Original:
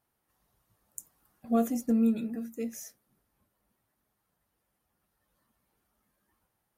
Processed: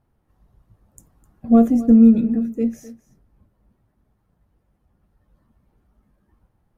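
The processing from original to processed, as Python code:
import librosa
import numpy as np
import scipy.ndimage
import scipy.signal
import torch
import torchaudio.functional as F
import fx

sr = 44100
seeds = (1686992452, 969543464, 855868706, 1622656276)

p1 = fx.tilt_eq(x, sr, slope=-4.0)
p2 = p1 + fx.echo_single(p1, sr, ms=257, db=-18.5, dry=0)
y = F.gain(torch.from_numpy(p2), 6.0).numpy()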